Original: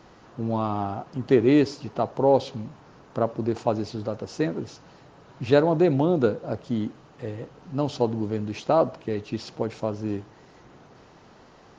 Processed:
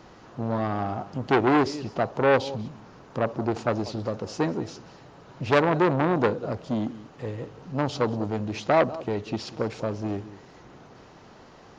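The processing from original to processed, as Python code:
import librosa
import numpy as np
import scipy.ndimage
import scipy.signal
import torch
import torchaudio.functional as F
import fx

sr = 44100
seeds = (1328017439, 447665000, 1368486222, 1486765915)

p1 = x + fx.echo_single(x, sr, ms=191, db=-18.5, dry=0)
p2 = fx.transformer_sat(p1, sr, knee_hz=1500.0)
y = p2 * 10.0 ** (2.0 / 20.0)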